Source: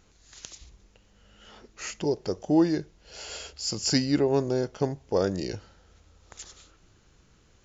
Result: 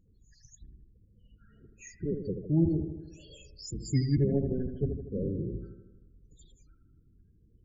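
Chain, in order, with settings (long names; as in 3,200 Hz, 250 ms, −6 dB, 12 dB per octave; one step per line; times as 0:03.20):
sub-octave generator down 1 octave, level +2 dB
all-pass phaser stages 6, 1.9 Hz, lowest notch 790–1,800 Hz
spectral peaks only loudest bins 16
on a send: bucket-brigade delay 79 ms, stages 1,024, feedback 60%, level −7.5 dB
on the sum: level −6 dB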